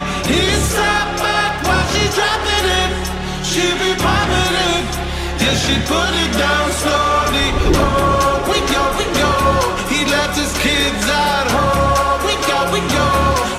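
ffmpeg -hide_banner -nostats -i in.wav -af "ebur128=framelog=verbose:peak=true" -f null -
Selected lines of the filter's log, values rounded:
Integrated loudness:
  I:         -15.1 LUFS
  Threshold: -25.1 LUFS
Loudness range:
  LRA:         1.2 LU
  Threshold: -35.2 LUFS
  LRA low:   -15.9 LUFS
  LRA high:  -14.7 LUFS
True peak:
  Peak:       -1.1 dBFS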